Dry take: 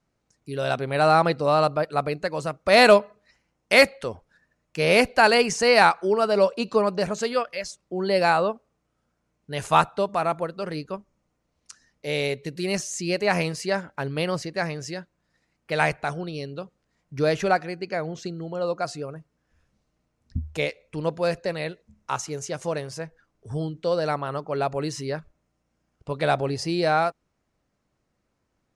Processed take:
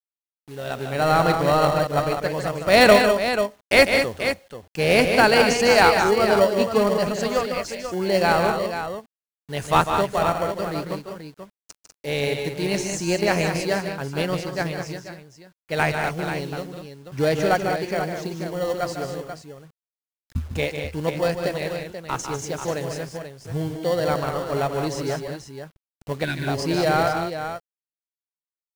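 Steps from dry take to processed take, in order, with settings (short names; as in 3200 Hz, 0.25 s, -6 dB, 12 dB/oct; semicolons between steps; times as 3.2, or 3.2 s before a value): opening faded in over 1.30 s; bit-crush 8-bit; on a send: tapped delay 0.15/0.197/0.486 s -8/-7.5/-9 dB; 26.24–26.48 on the sum: spectral gain 400–1400 Hz -21 dB; in parallel at -10.5 dB: sample-and-hold 35×; 13.74–15.77 on the sum: upward expander 1.5:1, over -34 dBFS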